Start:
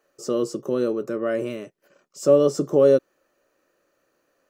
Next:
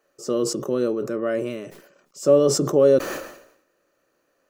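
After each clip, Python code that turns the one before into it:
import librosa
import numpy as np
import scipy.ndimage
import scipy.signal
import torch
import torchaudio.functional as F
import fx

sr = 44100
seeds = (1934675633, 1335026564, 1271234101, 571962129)

y = fx.sustainer(x, sr, db_per_s=78.0)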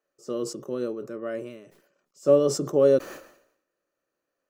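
y = fx.upward_expand(x, sr, threshold_db=-35.0, expansion=1.5)
y = y * librosa.db_to_amplitude(-2.0)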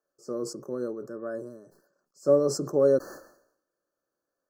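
y = fx.brickwall_bandstop(x, sr, low_hz=1800.0, high_hz=4100.0)
y = y * librosa.db_to_amplitude(-2.5)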